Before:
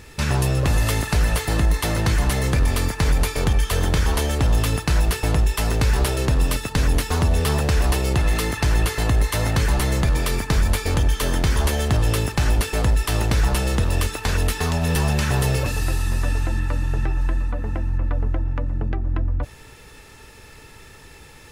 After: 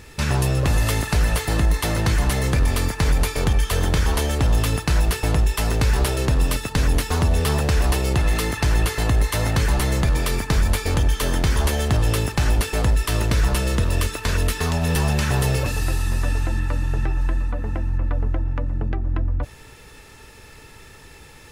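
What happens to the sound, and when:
12.92–14.66 s: Butterworth band-stop 800 Hz, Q 6.2

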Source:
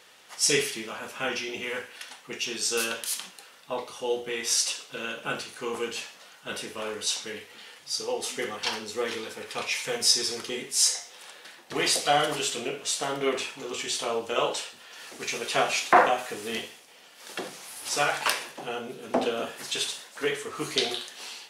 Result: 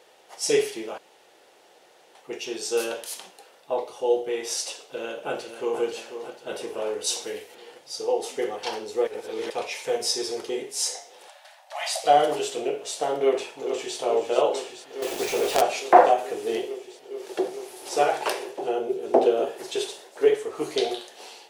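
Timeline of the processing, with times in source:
0.98–2.15 s: room tone
4.85–5.81 s: echo throw 490 ms, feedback 60%, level -9.5 dB
7.04–7.55 s: treble shelf 4.6 kHz +10.5 dB
9.07–9.50 s: reverse
11.28–12.04 s: brick-wall FIR high-pass 550 Hz
13.23–13.98 s: echo throw 430 ms, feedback 85%, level -9.5 dB
15.02–15.62 s: companded quantiser 2-bit
16.46–20.34 s: peaking EQ 380 Hz +9.5 dB 0.32 oct
whole clip: high-order bell 530 Hz +11.5 dB; trim -5 dB

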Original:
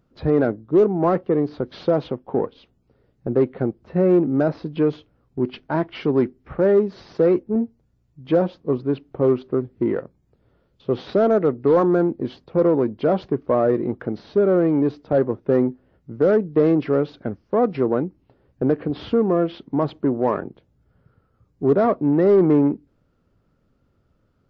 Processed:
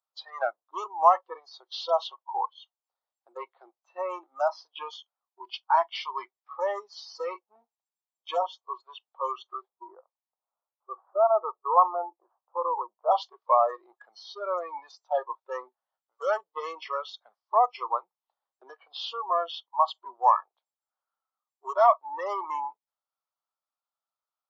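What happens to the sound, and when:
9.68–13.11 s: steep low-pass 1.3 kHz
whole clip: steep high-pass 770 Hz 36 dB/octave; spectral noise reduction 23 dB; high-order bell 2 kHz -10 dB 1.2 oct; trim +8 dB

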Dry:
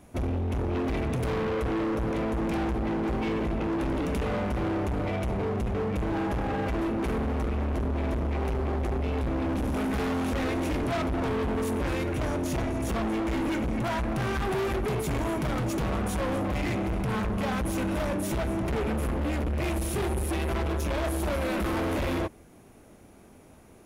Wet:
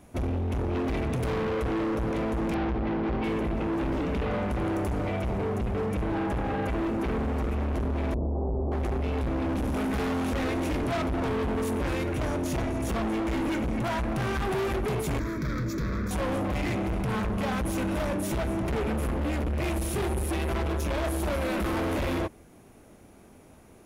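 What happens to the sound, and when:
2.54–7.55 s: bands offset in time lows, highs 700 ms, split 5.1 kHz
8.14–8.72 s: inverse Chebyshev low-pass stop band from 2.1 kHz, stop band 50 dB
15.19–16.11 s: static phaser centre 2.9 kHz, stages 6

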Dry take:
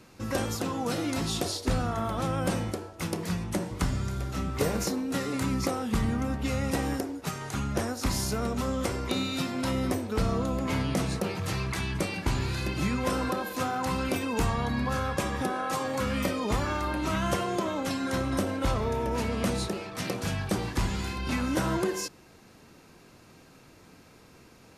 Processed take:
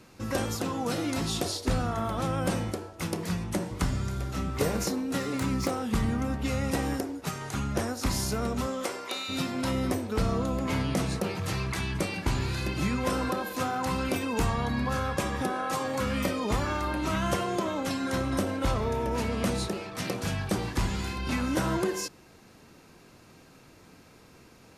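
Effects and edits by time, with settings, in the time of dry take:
5.18–5.84 s: self-modulated delay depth 0.051 ms
8.66–9.28 s: high-pass 240 Hz -> 850 Hz

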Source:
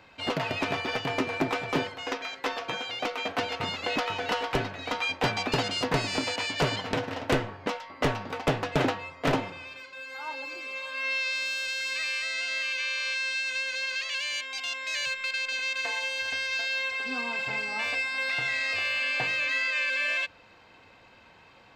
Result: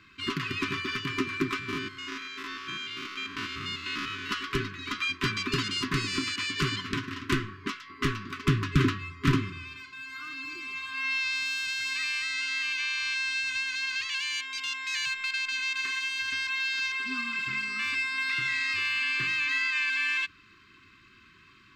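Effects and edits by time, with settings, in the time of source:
1.59–4.31 s: spectrogram pixelated in time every 100 ms
8.48–14.06 s: peaking EQ 72 Hz +11.5 dB 2.5 oct
16.47–16.92 s: reverse
whole clip: FFT band-reject 410–1000 Hz

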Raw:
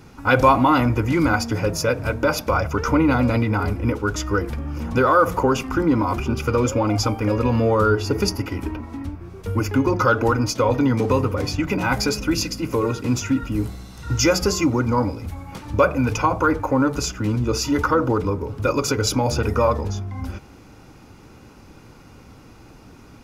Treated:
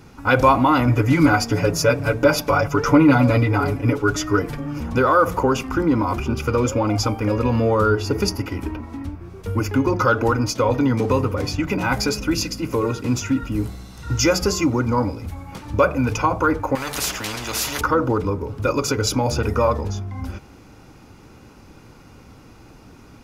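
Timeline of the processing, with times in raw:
0.87–4.80 s: comb 7 ms, depth 97%
16.75–17.81 s: spectrum-flattening compressor 4:1

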